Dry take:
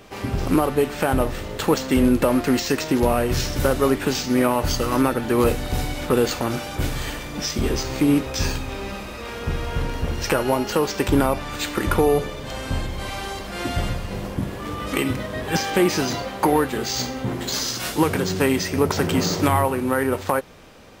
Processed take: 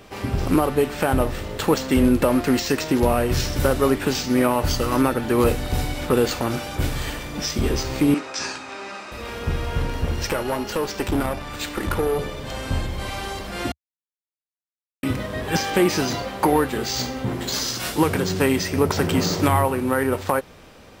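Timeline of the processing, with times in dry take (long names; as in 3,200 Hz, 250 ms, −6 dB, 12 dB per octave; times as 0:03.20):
0:08.14–0:09.12: loudspeaker in its box 390–8,100 Hz, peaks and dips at 490 Hz −8 dB, 1,400 Hz +4 dB, 3,300 Hz −5 dB
0:10.27–0:12.19: tube saturation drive 15 dB, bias 0.55
0:13.72–0:15.03: silence
whole clip: parametric band 76 Hz +2.5 dB; notch filter 6,500 Hz, Q 30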